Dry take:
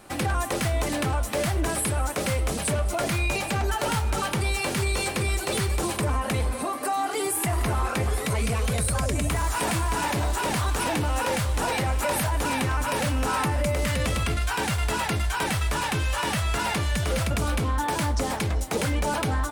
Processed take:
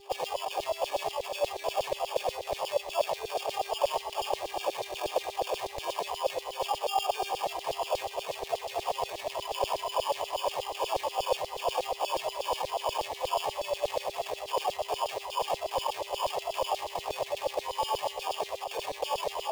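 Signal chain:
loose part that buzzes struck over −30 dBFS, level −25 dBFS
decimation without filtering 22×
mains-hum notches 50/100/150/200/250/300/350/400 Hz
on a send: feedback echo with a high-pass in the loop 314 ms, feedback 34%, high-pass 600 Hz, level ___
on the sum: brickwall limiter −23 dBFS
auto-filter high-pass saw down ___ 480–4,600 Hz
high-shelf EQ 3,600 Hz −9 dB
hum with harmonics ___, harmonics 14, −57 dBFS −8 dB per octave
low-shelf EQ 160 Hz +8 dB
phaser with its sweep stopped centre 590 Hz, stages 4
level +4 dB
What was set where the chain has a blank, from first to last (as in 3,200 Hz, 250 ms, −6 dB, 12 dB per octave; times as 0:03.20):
−9 dB, 8.3 Hz, 400 Hz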